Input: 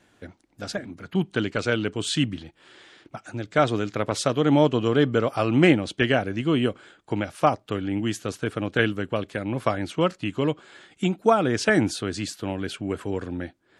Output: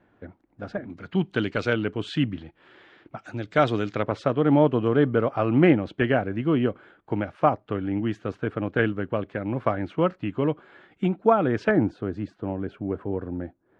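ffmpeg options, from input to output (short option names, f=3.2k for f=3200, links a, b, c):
-af "asetnsamples=n=441:p=0,asendcmd='0.9 lowpass f 3900;1.73 lowpass f 2300;3.19 lowpass f 4300;4.03 lowpass f 1800;11.71 lowpass f 1000',lowpass=1.5k"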